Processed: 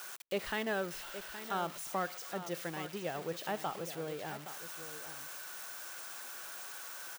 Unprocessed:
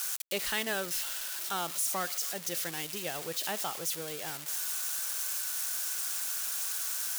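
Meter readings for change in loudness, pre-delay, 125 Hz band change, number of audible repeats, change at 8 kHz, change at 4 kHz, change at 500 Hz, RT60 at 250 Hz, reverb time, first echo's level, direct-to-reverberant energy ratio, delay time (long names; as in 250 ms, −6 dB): −8.0 dB, no reverb audible, +2.0 dB, 1, −14.0 dB, −9.5 dB, +1.0 dB, no reverb audible, no reverb audible, −11.5 dB, no reverb audible, 819 ms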